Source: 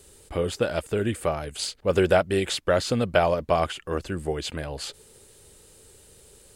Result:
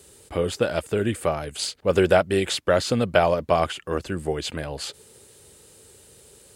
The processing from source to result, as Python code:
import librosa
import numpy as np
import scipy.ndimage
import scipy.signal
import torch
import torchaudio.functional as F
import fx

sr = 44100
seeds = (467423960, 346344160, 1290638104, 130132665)

y = scipy.signal.sosfilt(scipy.signal.butter(2, 74.0, 'highpass', fs=sr, output='sos'), x)
y = y * 10.0 ** (2.0 / 20.0)